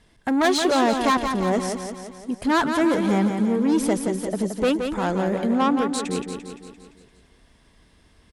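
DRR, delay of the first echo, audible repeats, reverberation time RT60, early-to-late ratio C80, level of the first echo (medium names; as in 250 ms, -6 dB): no reverb, 172 ms, 6, no reverb, no reverb, -6.5 dB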